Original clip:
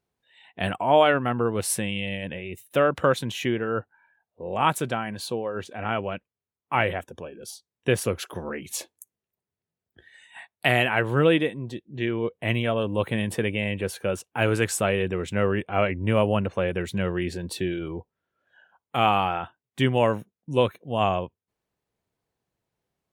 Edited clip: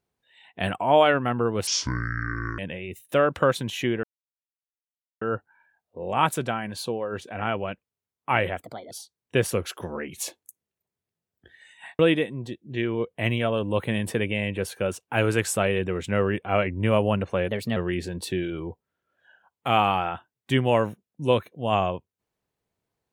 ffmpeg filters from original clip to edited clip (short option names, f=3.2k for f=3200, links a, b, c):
-filter_complex "[0:a]asplit=9[a][b][c][d][e][f][g][h][i];[a]atrim=end=1.674[j];[b]atrim=start=1.67:end=2.2,asetpts=PTS-STARTPTS,asetrate=25578,aresample=44100,atrim=end_sample=40298,asetpts=PTS-STARTPTS[k];[c]atrim=start=2.196:end=3.65,asetpts=PTS-STARTPTS,afade=t=out:st=1.45:d=0.004:c=hsin,apad=pad_dur=1.18[l];[d]atrim=start=3.65:end=7.064,asetpts=PTS-STARTPTS,afade=t=in:d=0.004:c=hsin[m];[e]atrim=start=7.06:end=7.44,asetpts=PTS-STARTPTS,asetrate=58212,aresample=44100,atrim=end_sample=12695,asetpts=PTS-STARTPTS[n];[f]atrim=start=7.436:end=10.522[o];[g]atrim=start=11.228:end=16.724[p];[h]atrim=start=16.72:end=17.05,asetpts=PTS-STARTPTS,asetrate=51597,aresample=44100,atrim=end_sample=12438,asetpts=PTS-STARTPTS[q];[i]atrim=start=17.046[r];[j][k]acrossfade=d=0.004:c1=hsin:c2=hsin[s];[l][m]concat=n=2:v=0:a=1[t];[s][t]acrossfade=d=0.004:c1=hsin:c2=hsin[u];[u][n]acrossfade=d=0.004:c1=hsin:c2=hsin[v];[v][o]acrossfade=d=0.004:c1=hsin:c2=hsin[w];[w][p]acrossfade=d=0.004:c1=hsin:c2=hsin[x];[x][q]acrossfade=d=0.004:c1=hsin:c2=hsin[y];[y][r]acrossfade=d=0.004:c1=hsin:c2=hsin"